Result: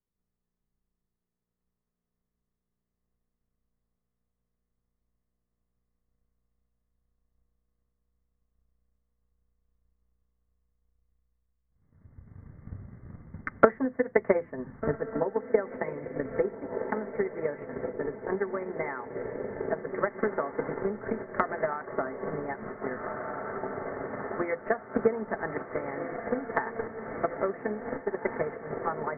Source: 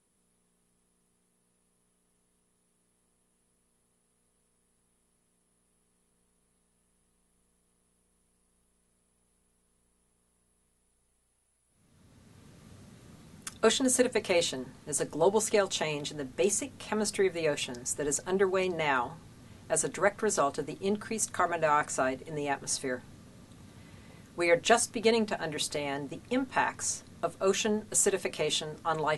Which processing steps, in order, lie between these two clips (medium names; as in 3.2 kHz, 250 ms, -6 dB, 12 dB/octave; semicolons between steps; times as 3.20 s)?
on a send: echo that smears into a reverb 1610 ms, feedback 74%, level -7 dB; on the sum: compression 16:1, threshold -39 dBFS, peak gain reduction 22 dB; transient shaper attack +10 dB, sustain -2 dB; Chebyshev low-pass 2.1 kHz, order 8; three bands expanded up and down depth 70%; trim +9 dB